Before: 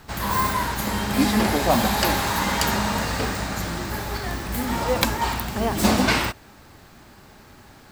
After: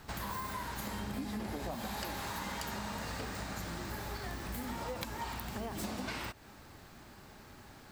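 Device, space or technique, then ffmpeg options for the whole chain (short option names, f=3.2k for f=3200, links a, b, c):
serial compression, leveller first: -filter_complex "[0:a]asettb=1/sr,asplit=3[a][b][c];[a]atrim=end=0.994[d];[b]atrim=start=0.99:end=1.75,asetpts=PTS-STARTPTS,afade=t=in:d=0.004:c=qsin,afade=t=out:st=0.756:d=0.004:c=qsin,lowshelf=f=490:g=6[e];[c]atrim=start=1.746[f];[d][e]acrossfade=d=0.004:c1=hsin:c2=qsin[g];[g][f]acrossfade=d=0.004:c1=qsin:c2=hsin,acompressor=threshold=-21dB:ratio=2.5,acompressor=threshold=-32dB:ratio=4,volume=-6dB"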